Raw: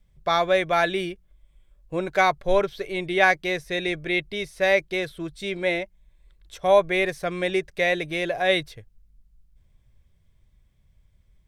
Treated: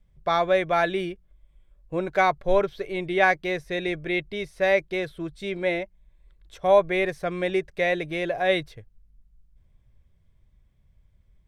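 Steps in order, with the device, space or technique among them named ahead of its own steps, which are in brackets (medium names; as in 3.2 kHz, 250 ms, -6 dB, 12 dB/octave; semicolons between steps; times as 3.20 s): behind a face mask (treble shelf 2.8 kHz -8 dB)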